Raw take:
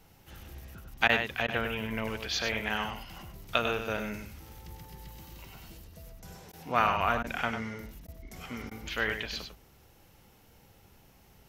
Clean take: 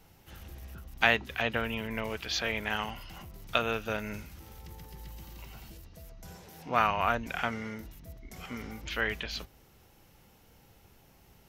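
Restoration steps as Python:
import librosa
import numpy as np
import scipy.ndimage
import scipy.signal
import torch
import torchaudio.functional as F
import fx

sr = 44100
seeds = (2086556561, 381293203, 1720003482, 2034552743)

y = fx.fix_interpolate(x, sr, at_s=(1.08, 1.47, 6.52, 7.23, 8.07, 8.7), length_ms=11.0)
y = fx.fix_echo_inverse(y, sr, delay_ms=99, level_db=-7.5)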